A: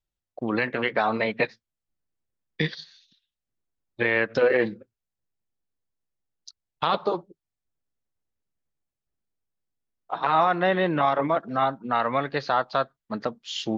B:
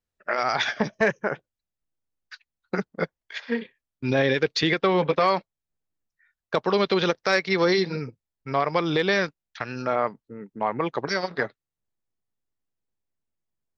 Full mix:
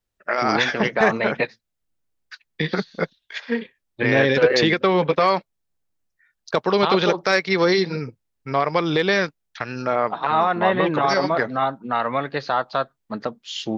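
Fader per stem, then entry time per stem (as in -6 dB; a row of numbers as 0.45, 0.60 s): +1.5, +3.0 dB; 0.00, 0.00 s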